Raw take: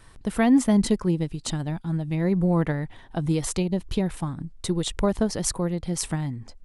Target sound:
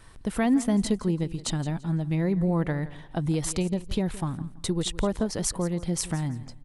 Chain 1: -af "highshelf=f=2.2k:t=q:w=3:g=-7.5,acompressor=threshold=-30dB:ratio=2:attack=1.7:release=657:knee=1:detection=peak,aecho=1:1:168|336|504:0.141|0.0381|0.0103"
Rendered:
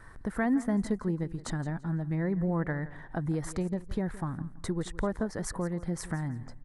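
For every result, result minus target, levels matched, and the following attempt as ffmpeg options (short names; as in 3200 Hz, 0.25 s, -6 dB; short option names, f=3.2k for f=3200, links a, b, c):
4000 Hz band -9.0 dB; compressor: peak gain reduction +5 dB
-af "acompressor=threshold=-30dB:ratio=2:attack=1.7:release=657:knee=1:detection=peak,aecho=1:1:168|336|504:0.141|0.0381|0.0103"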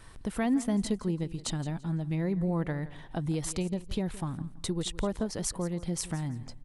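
compressor: peak gain reduction +5 dB
-af "acompressor=threshold=-20.5dB:ratio=2:attack=1.7:release=657:knee=1:detection=peak,aecho=1:1:168|336|504:0.141|0.0381|0.0103"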